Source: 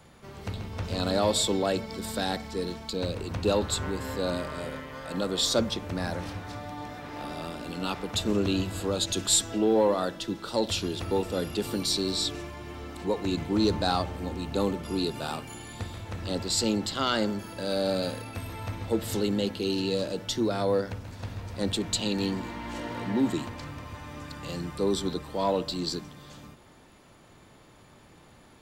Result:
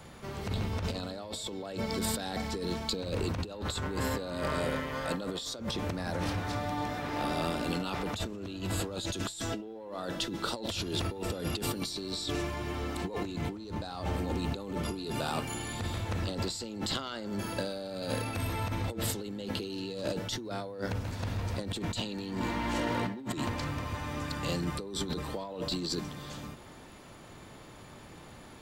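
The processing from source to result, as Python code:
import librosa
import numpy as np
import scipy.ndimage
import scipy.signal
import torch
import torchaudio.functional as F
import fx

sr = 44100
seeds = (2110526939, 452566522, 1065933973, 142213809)

y = fx.over_compress(x, sr, threshold_db=-35.0, ratio=-1.0)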